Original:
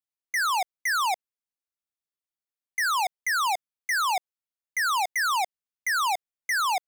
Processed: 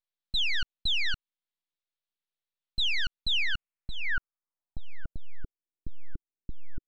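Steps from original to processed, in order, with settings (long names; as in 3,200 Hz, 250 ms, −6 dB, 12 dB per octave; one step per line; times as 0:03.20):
treble cut that deepens with the level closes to 1,900 Hz, closed at −25 dBFS
full-wave rectification
low-pass filter sweep 3,800 Hz → 350 Hz, 0:03.25–0:05.62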